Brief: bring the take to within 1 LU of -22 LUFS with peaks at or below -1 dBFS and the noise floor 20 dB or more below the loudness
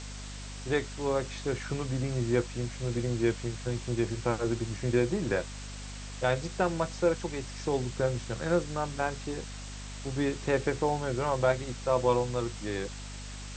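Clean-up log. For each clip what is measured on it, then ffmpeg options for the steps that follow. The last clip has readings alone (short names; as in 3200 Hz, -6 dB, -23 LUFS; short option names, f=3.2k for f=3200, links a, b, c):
hum 50 Hz; harmonics up to 250 Hz; hum level -40 dBFS; noise floor -41 dBFS; noise floor target -51 dBFS; loudness -31.0 LUFS; peak -12.0 dBFS; loudness target -22.0 LUFS
-> -af "bandreject=f=50:t=h:w=4,bandreject=f=100:t=h:w=4,bandreject=f=150:t=h:w=4,bandreject=f=200:t=h:w=4,bandreject=f=250:t=h:w=4"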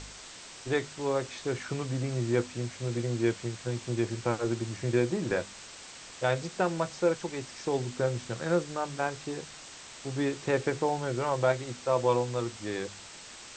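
hum none; noise floor -47 dBFS; noise floor target -51 dBFS
-> -af "afftdn=nr=6:nf=-47"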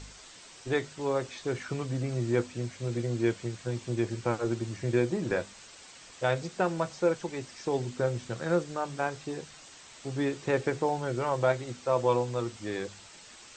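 noise floor -51 dBFS; loudness -31.0 LUFS; peak -12.0 dBFS; loudness target -22.0 LUFS
-> -af "volume=9dB"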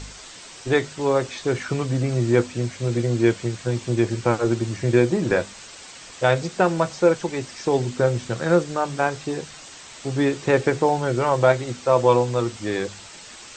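loudness -22.0 LUFS; peak -3.0 dBFS; noise floor -42 dBFS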